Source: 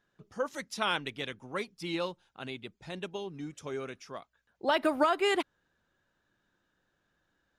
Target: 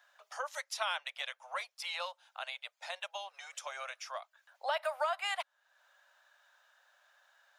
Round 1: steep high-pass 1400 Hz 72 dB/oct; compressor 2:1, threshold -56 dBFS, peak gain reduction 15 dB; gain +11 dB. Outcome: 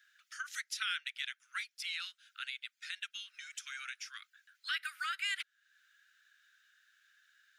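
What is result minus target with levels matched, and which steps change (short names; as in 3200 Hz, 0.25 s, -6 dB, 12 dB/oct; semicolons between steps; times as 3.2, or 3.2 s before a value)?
1000 Hz band -8.0 dB
change: steep high-pass 580 Hz 72 dB/oct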